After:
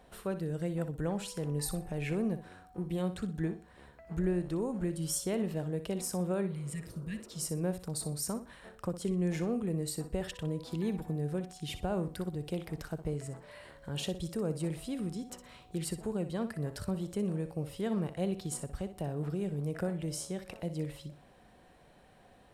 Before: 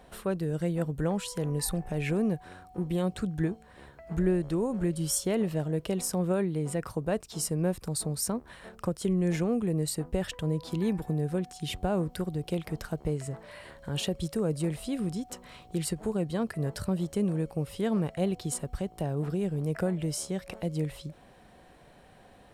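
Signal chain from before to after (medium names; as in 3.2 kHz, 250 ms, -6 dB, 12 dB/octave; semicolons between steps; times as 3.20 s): spectral replace 6.49–7.44 s, 240–1600 Hz after; flutter echo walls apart 10.5 m, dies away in 0.32 s; trim -5 dB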